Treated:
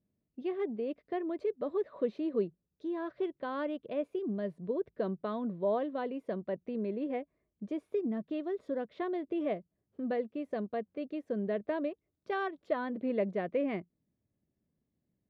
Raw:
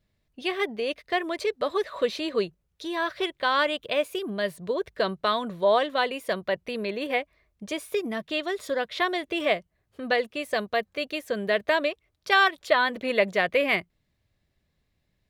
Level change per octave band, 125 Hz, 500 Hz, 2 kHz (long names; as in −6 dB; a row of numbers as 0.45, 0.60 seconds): −2.0, −7.5, −20.0 decibels